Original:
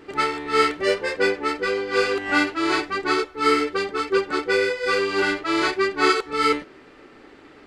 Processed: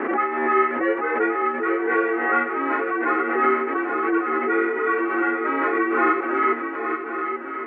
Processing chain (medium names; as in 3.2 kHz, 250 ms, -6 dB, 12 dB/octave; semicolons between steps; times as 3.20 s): mistuned SSB -53 Hz 390–2100 Hz; shuffle delay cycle 1115 ms, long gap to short 3:1, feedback 45%, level -7.5 dB; swell ahead of each attack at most 37 dB/s